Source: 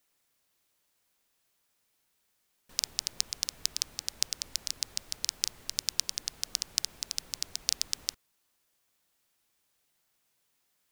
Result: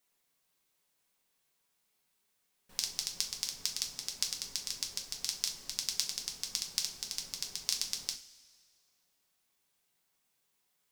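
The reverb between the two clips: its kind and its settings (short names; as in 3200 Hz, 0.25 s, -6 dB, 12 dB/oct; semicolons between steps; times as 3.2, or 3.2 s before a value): two-slope reverb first 0.31 s, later 1.9 s, from -19 dB, DRR 1 dB; gain -5 dB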